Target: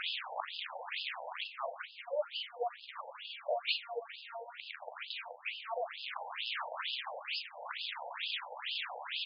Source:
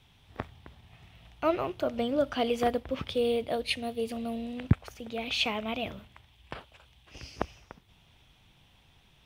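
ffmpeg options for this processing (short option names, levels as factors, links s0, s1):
-filter_complex "[0:a]aeval=exprs='val(0)+0.5*0.0237*sgn(val(0))':c=same,acrossover=split=120[s0][s1];[s1]acompressor=threshold=0.01:ratio=6[s2];[s0][s2]amix=inputs=2:normalize=0,asplit=2[s3][s4];[s4]aecho=0:1:38|48:0.422|0.299[s5];[s3][s5]amix=inputs=2:normalize=0,afftfilt=real='re*between(b*sr/1024,650*pow(3700/650,0.5+0.5*sin(2*PI*2.2*pts/sr))/1.41,650*pow(3700/650,0.5+0.5*sin(2*PI*2.2*pts/sr))*1.41)':imag='im*between(b*sr/1024,650*pow(3700/650,0.5+0.5*sin(2*PI*2.2*pts/sr))/1.41,650*pow(3700/650,0.5+0.5*sin(2*PI*2.2*pts/sr))*1.41)':win_size=1024:overlap=0.75,volume=2.99"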